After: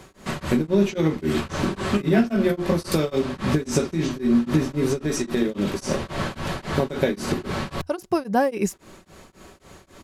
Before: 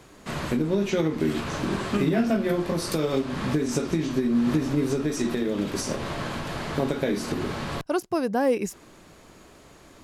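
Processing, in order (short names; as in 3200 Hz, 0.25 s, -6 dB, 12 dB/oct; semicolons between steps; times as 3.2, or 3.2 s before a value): bell 84 Hz +11.5 dB 0.23 oct; comb 5.3 ms, depth 31%; beating tremolo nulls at 3.7 Hz; gain +5 dB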